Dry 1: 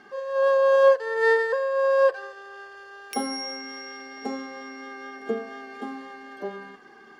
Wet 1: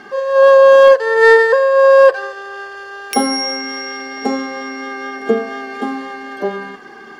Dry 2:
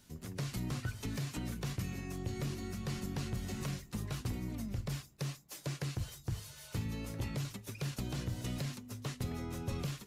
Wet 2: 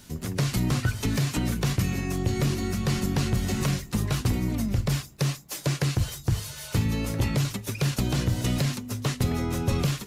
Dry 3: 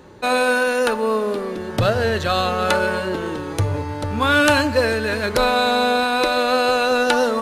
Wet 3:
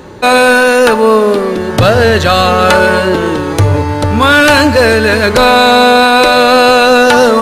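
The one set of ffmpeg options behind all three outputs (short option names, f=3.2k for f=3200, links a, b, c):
-af "apsyclip=14.5dB,volume=-1.5dB"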